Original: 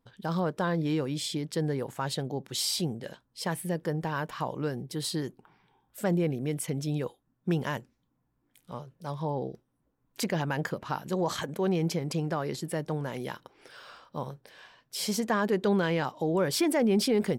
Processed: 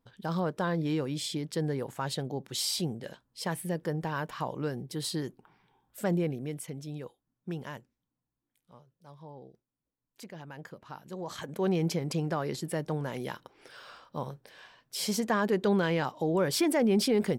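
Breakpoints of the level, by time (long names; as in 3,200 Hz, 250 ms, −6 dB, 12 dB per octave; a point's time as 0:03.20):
0:06.17 −1.5 dB
0:06.79 −9 dB
0:07.72 −9 dB
0:08.83 −16 dB
0:10.31 −16 dB
0:11.28 −9.5 dB
0:11.64 −0.5 dB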